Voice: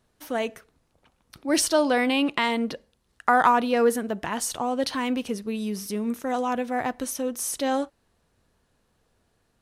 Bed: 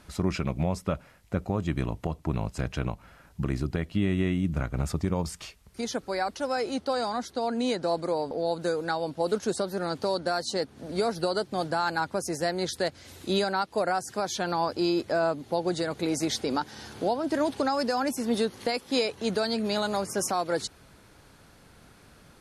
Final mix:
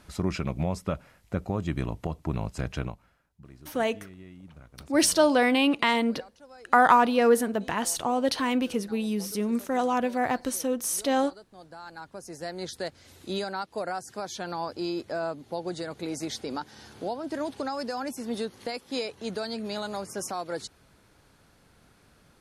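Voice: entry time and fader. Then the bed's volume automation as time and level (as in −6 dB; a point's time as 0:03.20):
3.45 s, +0.5 dB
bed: 0:02.80 −1 dB
0:03.30 −21 dB
0:11.49 −21 dB
0:12.66 −5.5 dB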